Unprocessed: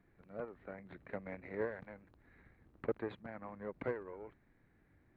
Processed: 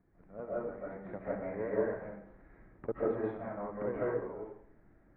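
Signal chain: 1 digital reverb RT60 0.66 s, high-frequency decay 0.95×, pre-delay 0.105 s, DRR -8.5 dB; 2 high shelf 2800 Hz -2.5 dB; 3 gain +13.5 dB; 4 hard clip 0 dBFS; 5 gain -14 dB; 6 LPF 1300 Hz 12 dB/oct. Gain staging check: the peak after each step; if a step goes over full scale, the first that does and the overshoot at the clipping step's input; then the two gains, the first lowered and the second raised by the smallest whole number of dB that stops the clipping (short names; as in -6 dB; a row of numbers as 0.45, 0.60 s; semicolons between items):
-18.0, -18.0, -4.5, -4.5, -18.5, -19.0 dBFS; no overload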